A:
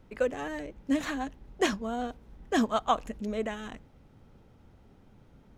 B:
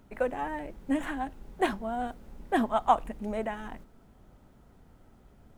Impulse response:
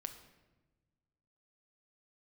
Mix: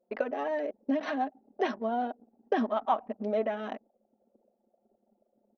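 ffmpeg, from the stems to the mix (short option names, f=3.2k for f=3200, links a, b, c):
-filter_complex "[0:a]equalizer=f=640:t=o:w=0.8:g=14,alimiter=limit=-17dB:level=0:latency=1:release=63,volume=2.5dB,asplit=2[a][b];[b]volume=-23.5dB[c];[1:a]volume=-1,adelay=5.8,volume=-7dB,asplit=3[d][e][f];[e]volume=-6.5dB[g];[f]apad=whole_len=245794[h];[a][h]sidechaincompress=threshold=-47dB:ratio=4:attack=20:release=197[i];[2:a]atrim=start_sample=2205[j];[c][g]amix=inputs=2:normalize=0[k];[k][j]afir=irnorm=-1:irlink=0[l];[i][d][l]amix=inputs=3:normalize=0,afftfilt=real='re*between(b*sr/4096,200,6200)':imag='im*between(b*sr/4096,200,6200)':win_size=4096:overlap=0.75,anlmdn=0.251"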